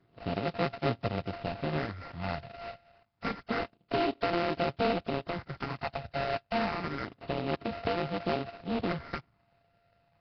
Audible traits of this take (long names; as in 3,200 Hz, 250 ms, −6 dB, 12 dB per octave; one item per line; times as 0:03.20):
a buzz of ramps at a fixed pitch in blocks of 64 samples
phaser sweep stages 8, 0.28 Hz, lowest notch 310–3,800 Hz
aliases and images of a low sample rate 3,400 Hz, jitter 20%
Nellymoser